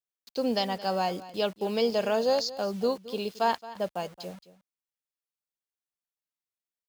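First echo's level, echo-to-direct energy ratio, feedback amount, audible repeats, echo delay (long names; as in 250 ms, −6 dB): −17.0 dB, −17.0 dB, repeats not evenly spaced, 1, 222 ms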